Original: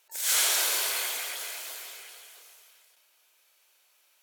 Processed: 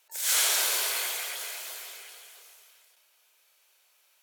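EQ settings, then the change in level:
Butterworth high-pass 340 Hz 96 dB per octave
0.0 dB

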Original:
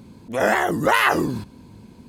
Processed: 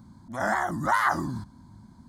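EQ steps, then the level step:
parametric band 14,000 Hz −13 dB 0.74 octaves
phaser with its sweep stopped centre 1,100 Hz, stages 4
−3.0 dB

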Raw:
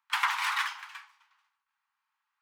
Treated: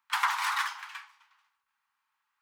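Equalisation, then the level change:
dynamic equaliser 2,600 Hz, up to −6 dB, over −42 dBFS, Q 1.2
+2.5 dB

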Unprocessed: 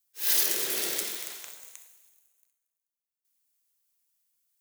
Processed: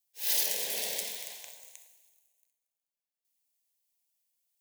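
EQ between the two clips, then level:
low-shelf EQ 410 Hz −10.5 dB
high-shelf EQ 3,000 Hz −9.5 dB
phaser with its sweep stopped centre 350 Hz, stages 6
+5.0 dB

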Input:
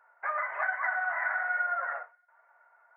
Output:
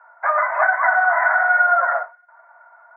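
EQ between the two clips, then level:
dynamic equaliser 580 Hz, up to +3 dB, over −47 dBFS, Q 1.1
loudspeaker in its box 430–2,500 Hz, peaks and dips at 670 Hz +10 dB, 980 Hz +8 dB, 1,400 Hz +6 dB
+7.0 dB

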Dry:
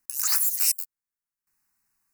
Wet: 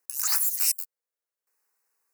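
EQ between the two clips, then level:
high-pass with resonance 490 Hz, resonance Q 5.2
−1.5 dB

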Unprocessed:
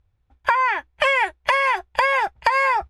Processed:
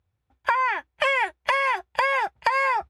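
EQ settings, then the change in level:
high-pass filter 91 Hz 12 dB per octave
−3.5 dB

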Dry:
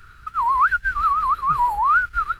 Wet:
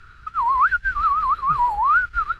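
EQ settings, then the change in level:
low-pass filter 6,200 Hz 12 dB per octave
0.0 dB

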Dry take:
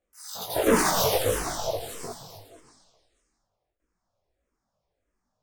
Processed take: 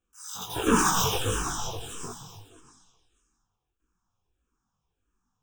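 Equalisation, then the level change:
phaser with its sweep stopped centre 3,000 Hz, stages 8
+3.0 dB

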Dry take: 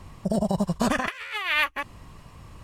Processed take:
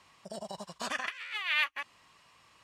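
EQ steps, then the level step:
resonant band-pass 4,500 Hz, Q 0.59
high-shelf EQ 4,300 Hz −6 dB
−1.0 dB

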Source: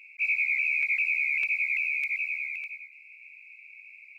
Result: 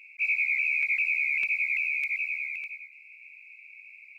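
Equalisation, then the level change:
parametric band 210 Hz +7 dB 1.1 octaves
0.0 dB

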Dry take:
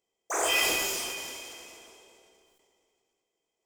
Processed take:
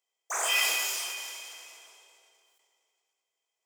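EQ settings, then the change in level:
high-pass filter 880 Hz 12 dB per octave
0.0 dB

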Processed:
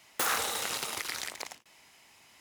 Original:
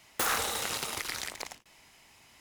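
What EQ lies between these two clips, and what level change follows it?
high-pass filter 120 Hz 6 dB per octave
low-shelf EQ 350 Hz −2.5 dB
0.0 dB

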